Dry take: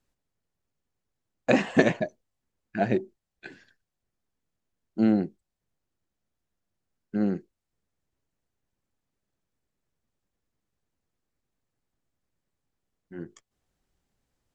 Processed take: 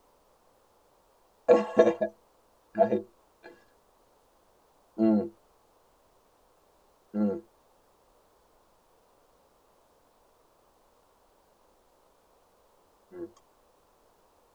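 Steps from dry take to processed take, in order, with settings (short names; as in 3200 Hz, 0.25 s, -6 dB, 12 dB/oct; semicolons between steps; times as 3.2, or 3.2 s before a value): metallic resonator 100 Hz, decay 0.22 s, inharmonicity 0.03; added noise pink -69 dBFS; graphic EQ 125/500/1000/2000 Hz -5/+11/+11/-6 dB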